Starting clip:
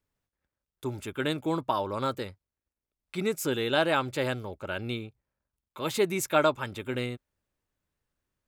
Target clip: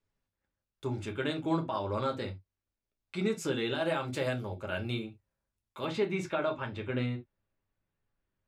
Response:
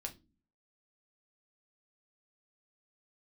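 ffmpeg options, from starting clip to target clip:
-filter_complex "[0:a]asetnsamples=n=441:p=0,asendcmd='3.75 lowpass f 12000;5.85 lowpass f 3200',lowpass=6400,alimiter=limit=0.0944:level=0:latency=1:release=99[s0];[1:a]atrim=start_sample=2205,atrim=end_sample=3969[s1];[s0][s1]afir=irnorm=-1:irlink=0,volume=1.12"

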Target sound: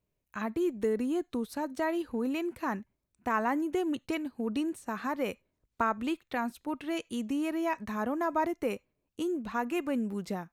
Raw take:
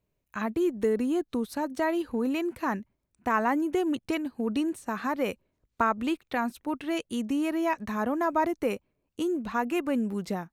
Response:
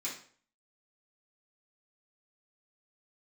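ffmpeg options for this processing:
-filter_complex "[0:a]asplit=2[s0][s1];[s1]highpass=860[s2];[1:a]atrim=start_sample=2205,afade=t=out:st=0.15:d=0.01,atrim=end_sample=7056[s3];[s2][s3]afir=irnorm=-1:irlink=0,volume=0.0794[s4];[s0][s4]amix=inputs=2:normalize=0,volume=0.668"

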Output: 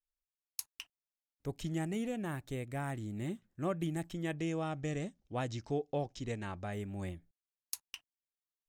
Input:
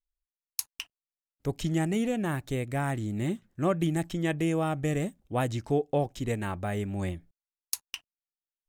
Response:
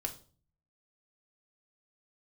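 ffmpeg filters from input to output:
-filter_complex "[0:a]asettb=1/sr,asplit=3[s0][s1][s2];[s0]atrim=end=4.394[s3];[s1]atrim=start=4.39:end=6.73,asetpts=PTS-STARTPTS,afade=t=in:d=0.004:c=qsin,afade=t=out:st=2.336:d=0.004:c=qsin,lowpass=f=5700:t=q:w=2.2[s4];[s2]atrim=start=6.726[s5];[s3][s4]acrossfade=d=0.004:c1=hsin:c2=qsin[s6];[s6][s5]acrossfade=d=0.004:c1=qsin:c2=hsin,volume=0.376"

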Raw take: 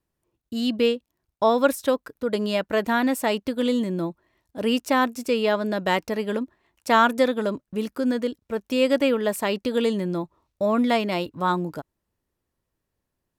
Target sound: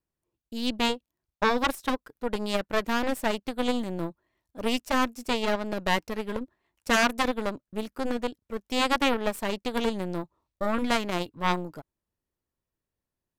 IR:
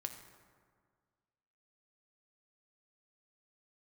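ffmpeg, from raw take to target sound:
-af "aeval=exprs='0.531*(cos(1*acos(clip(val(0)/0.531,-1,1)))-cos(1*PI/2))+0.0299*(cos(3*acos(clip(val(0)/0.531,-1,1)))-cos(3*PI/2))+0.119*(cos(4*acos(clip(val(0)/0.531,-1,1)))-cos(4*PI/2))+0.0335*(cos(7*acos(clip(val(0)/0.531,-1,1)))-cos(7*PI/2))':c=same,afftfilt=real='re*lt(hypot(re,im),0.708)':imag='im*lt(hypot(re,im),0.708)':win_size=1024:overlap=0.75"

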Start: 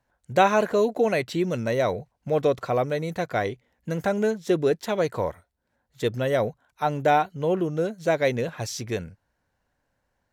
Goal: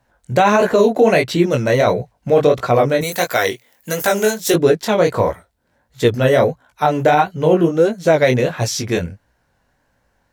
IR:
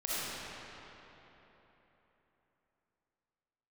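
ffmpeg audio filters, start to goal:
-filter_complex "[0:a]asettb=1/sr,asplit=3[s0][s1][s2];[s0]atrim=end=3.014[s3];[s1]atrim=start=3.01:end=4.54,asetpts=PTS-STARTPTS,afade=t=in:d=0.004:c=qsin,afade=t=out:st=1.526:d=0.004:c=qsin,aemphasis=mode=production:type=riaa[s4];[s2]atrim=start=4.536[s5];[s3][s4]acrossfade=d=0.004:c1=hsin:c2=qsin[s6];[s6][s5]acrossfade=d=0.004:c1=qsin:c2=hsin,flanger=delay=16:depth=7.9:speed=1.5,alimiter=level_in=6.68:limit=0.891:release=50:level=0:latency=1,volume=0.75"

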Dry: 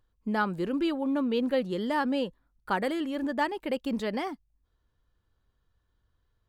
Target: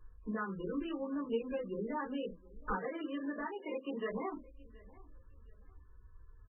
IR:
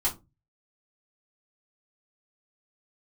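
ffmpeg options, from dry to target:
-filter_complex "[0:a]asplit=3[s0][s1][s2];[s0]afade=t=out:st=2.77:d=0.02[s3];[s1]highpass=290,afade=t=in:st=2.77:d=0.02,afade=t=out:st=4.09:d=0.02[s4];[s2]afade=t=in:st=4.09:d=0.02[s5];[s3][s4][s5]amix=inputs=3:normalize=0,acompressor=threshold=0.00794:ratio=8,aecho=1:1:721|1442:0.075|0.0217[s6];[1:a]atrim=start_sample=2205,afade=t=out:st=0.16:d=0.01,atrim=end_sample=7497,asetrate=57330,aresample=44100[s7];[s6][s7]afir=irnorm=-1:irlink=0,volume=1.19" -ar 22050 -c:a libmp3lame -b:a 8k

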